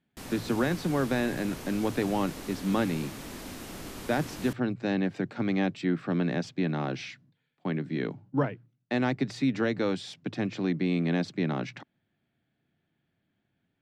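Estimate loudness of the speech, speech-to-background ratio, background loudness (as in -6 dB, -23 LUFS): -30.0 LUFS, 11.0 dB, -41.0 LUFS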